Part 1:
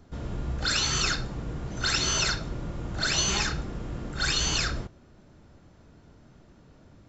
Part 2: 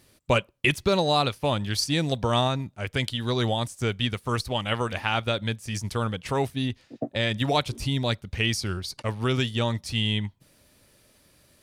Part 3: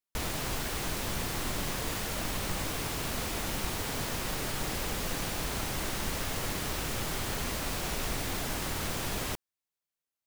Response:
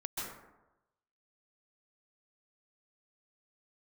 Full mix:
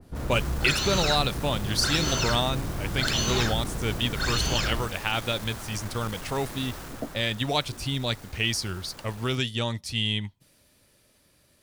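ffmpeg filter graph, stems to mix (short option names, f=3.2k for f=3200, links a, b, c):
-filter_complex "[0:a]highshelf=f=2.1k:g=-12,volume=2dB[a];[1:a]volume=-3.5dB[b];[2:a]highshelf=f=1.9k:t=q:w=1.5:g=-6,asoftclip=type=tanh:threshold=-32.5dB,volume=-2dB,afade=t=out:st=6.78:d=0.6:silence=0.421697[c];[a][b][c]amix=inputs=3:normalize=0,adynamicequalizer=threshold=0.01:dfrequency=2100:dqfactor=0.7:tfrequency=2100:tqfactor=0.7:attack=5:release=100:ratio=0.375:range=2.5:mode=boostabove:tftype=highshelf"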